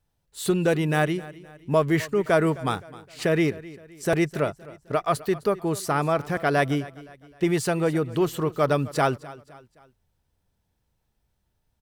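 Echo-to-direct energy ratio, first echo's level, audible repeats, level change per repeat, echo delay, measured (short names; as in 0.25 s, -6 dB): -18.0 dB, -19.0 dB, 3, -7.5 dB, 0.259 s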